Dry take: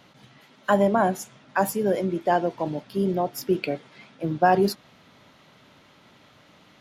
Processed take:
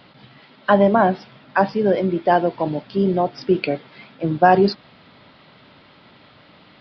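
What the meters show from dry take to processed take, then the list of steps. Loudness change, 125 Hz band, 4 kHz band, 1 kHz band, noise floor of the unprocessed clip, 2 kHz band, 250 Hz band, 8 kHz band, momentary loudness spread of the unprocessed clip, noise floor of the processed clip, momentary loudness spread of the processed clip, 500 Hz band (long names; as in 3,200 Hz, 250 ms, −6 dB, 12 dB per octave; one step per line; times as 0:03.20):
+5.5 dB, +5.5 dB, +4.5 dB, +5.5 dB, −56 dBFS, +5.5 dB, +5.5 dB, below −15 dB, 13 LU, −50 dBFS, 13 LU, +5.5 dB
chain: downsampling to 11,025 Hz
level +5.5 dB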